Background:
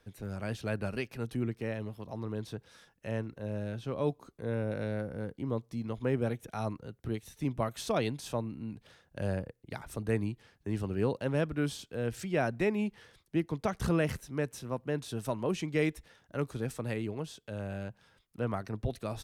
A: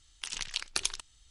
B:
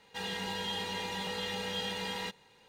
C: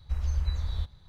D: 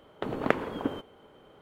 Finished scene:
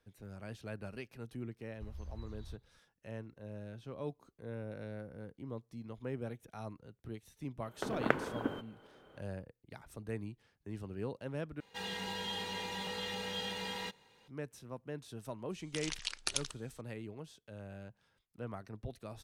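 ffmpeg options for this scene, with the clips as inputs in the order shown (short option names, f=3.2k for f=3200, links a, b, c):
-filter_complex "[0:a]volume=-10dB[a];[4:a]equalizer=f=1.5k:w=6.8:g=7[b];[a]asplit=2[c][d];[c]atrim=end=11.604[e];[2:a]atrim=end=2.68,asetpts=PTS-STARTPTS,volume=-3.5dB[f];[d]atrim=start=14.276[g];[3:a]atrim=end=1.08,asetpts=PTS-STARTPTS,volume=-18dB,afade=t=in:d=0.004:c=hsin,afade=t=out:st=1.076:d=0.004:c=hsin,adelay=1710[h];[b]atrim=end=1.61,asetpts=PTS-STARTPTS,volume=-5.5dB,afade=t=in:d=0.004:c=hsin,afade=t=out:st=1.606:d=0.004:c=hsin,adelay=7600[i];[1:a]atrim=end=1.3,asetpts=PTS-STARTPTS,volume=-4.5dB,afade=t=in:d=0.004:c=hsin,afade=t=out:st=1.296:d=0.004:c=hsin,adelay=15510[j];[e][f]acrossfade=d=0.004:c1=hsin:c2=hsin[k];[k][g]acrossfade=d=0.004:c1=hsin:c2=hsin[l];[l][h][i][j]amix=inputs=4:normalize=0"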